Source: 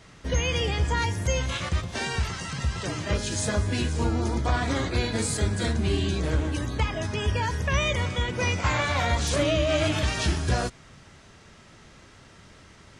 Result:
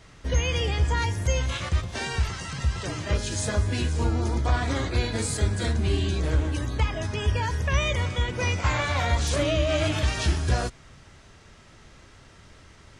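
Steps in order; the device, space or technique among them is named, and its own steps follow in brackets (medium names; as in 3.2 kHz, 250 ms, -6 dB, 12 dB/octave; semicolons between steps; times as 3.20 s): low shelf boost with a cut just above (bass shelf 66 Hz +8 dB; peaking EQ 190 Hz -3 dB 0.77 oct); trim -1 dB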